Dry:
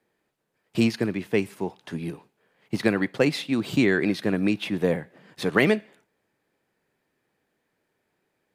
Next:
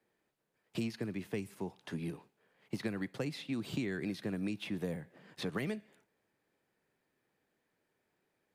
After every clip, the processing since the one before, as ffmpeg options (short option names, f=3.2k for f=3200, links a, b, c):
-filter_complex "[0:a]acrossover=split=200|5300[a][b][c];[a]acompressor=threshold=-34dB:ratio=4[d];[b]acompressor=threshold=-34dB:ratio=4[e];[c]acompressor=threshold=-51dB:ratio=4[f];[d][e][f]amix=inputs=3:normalize=0,volume=-5.5dB"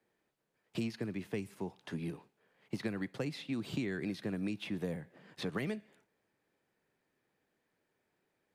-af "highshelf=f=9.6k:g=-5"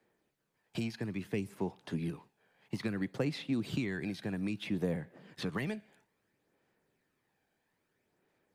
-af "aphaser=in_gain=1:out_gain=1:delay=1.3:decay=0.35:speed=0.6:type=sinusoidal,volume=1dB"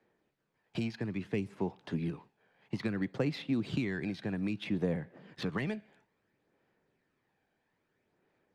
-af "adynamicsmooth=sensitivity=7.5:basefreq=5.3k,volume=1.5dB"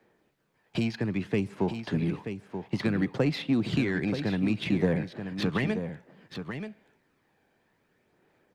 -filter_complex "[0:a]asplit=2[a][b];[b]asoftclip=type=tanh:threshold=-32dB,volume=-6dB[c];[a][c]amix=inputs=2:normalize=0,aecho=1:1:931:0.376,volume=4dB"